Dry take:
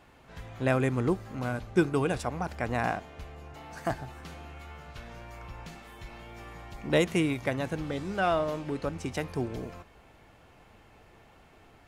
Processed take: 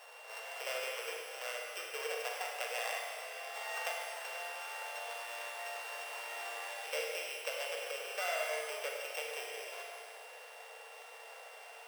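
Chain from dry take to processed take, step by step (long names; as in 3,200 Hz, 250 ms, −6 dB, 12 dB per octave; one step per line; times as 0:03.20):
samples sorted by size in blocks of 16 samples
downward compressor 5 to 1, threshold −42 dBFS, peak gain reduction 21 dB
Chebyshev high-pass filter 460 Hz, order 6
four-comb reverb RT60 2 s, combs from 33 ms, DRR −1 dB
level +5 dB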